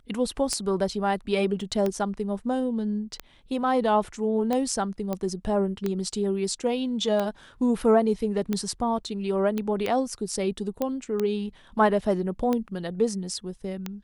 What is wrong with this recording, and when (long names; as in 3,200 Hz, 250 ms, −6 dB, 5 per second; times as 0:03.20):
scratch tick 45 rpm −14 dBFS
0:01.61: drop-out 2.2 ms
0:05.13: click −16 dBFS
0:09.58: click −16 dBFS
0:10.82: click −14 dBFS